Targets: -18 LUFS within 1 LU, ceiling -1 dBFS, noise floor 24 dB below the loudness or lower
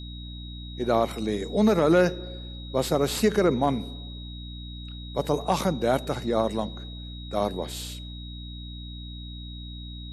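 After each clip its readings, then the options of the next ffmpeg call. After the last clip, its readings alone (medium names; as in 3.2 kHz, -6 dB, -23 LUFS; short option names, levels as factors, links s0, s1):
hum 60 Hz; highest harmonic 300 Hz; hum level -36 dBFS; steady tone 3.8 kHz; tone level -43 dBFS; loudness -25.5 LUFS; peak level -10.5 dBFS; loudness target -18.0 LUFS
-> -af "bandreject=f=60:t=h:w=6,bandreject=f=120:t=h:w=6,bandreject=f=180:t=h:w=6,bandreject=f=240:t=h:w=6,bandreject=f=300:t=h:w=6"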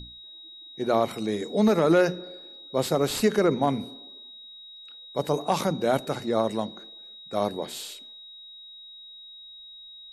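hum not found; steady tone 3.8 kHz; tone level -43 dBFS
-> -af "bandreject=f=3800:w=30"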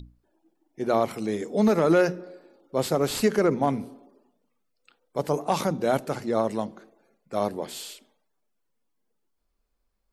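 steady tone not found; loudness -26.0 LUFS; peak level -10.5 dBFS; loudness target -18.0 LUFS
-> -af "volume=2.51"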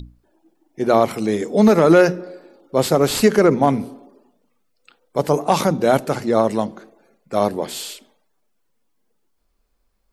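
loudness -18.0 LUFS; peak level -2.5 dBFS; noise floor -67 dBFS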